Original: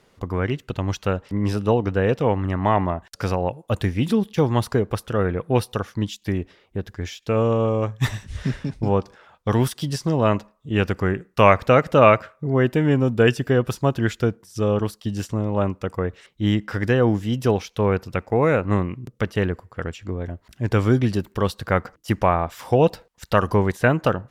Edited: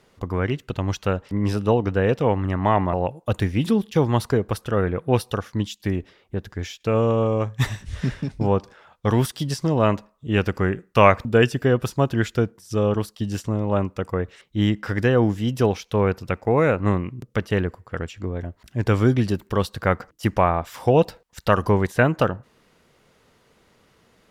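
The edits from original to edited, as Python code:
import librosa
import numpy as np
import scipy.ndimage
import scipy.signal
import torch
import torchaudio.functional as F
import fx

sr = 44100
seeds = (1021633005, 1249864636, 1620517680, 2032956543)

y = fx.edit(x, sr, fx.cut(start_s=2.93, length_s=0.42),
    fx.cut(start_s=11.67, length_s=1.43), tone=tone)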